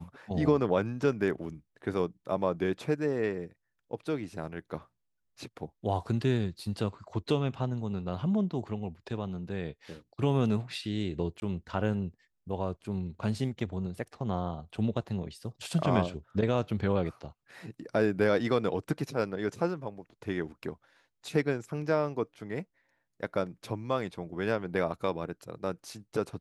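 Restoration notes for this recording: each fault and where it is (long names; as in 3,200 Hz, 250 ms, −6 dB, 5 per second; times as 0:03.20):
0:11.40–0:11.42: drop-out 21 ms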